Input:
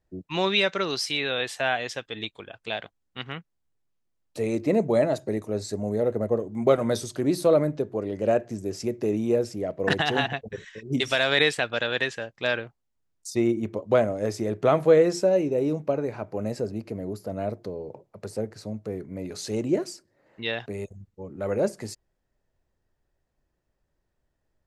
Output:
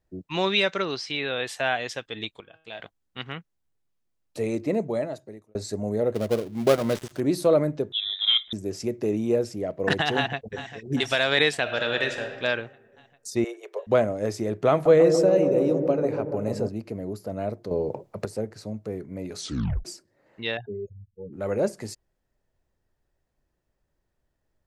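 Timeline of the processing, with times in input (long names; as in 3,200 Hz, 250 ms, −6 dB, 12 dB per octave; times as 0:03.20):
0:00.82–0:01.46: high-frequency loss of the air 130 metres
0:02.40–0:02.80: tuned comb filter 160 Hz, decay 0.63 s, mix 70%
0:04.40–0:05.55: fade out
0:06.14–0:07.20: gap after every zero crossing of 0.17 ms
0:07.92–0:08.53: voice inversion scrambler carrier 3,800 Hz
0:10.16–0:10.72: delay throw 400 ms, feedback 70%, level −12.5 dB
0:11.60–0:12.30: thrown reverb, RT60 1.6 s, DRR 5.5 dB
0:13.44–0:13.87: Butterworth high-pass 400 Hz 72 dB per octave
0:14.71–0:16.69: delay with a low-pass on its return 143 ms, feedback 69%, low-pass 780 Hz, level −4.5 dB
0:17.71–0:18.25: clip gain +9.5 dB
0:19.38: tape stop 0.47 s
0:20.57–0:21.33: expanding power law on the bin magnitudes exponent 2.6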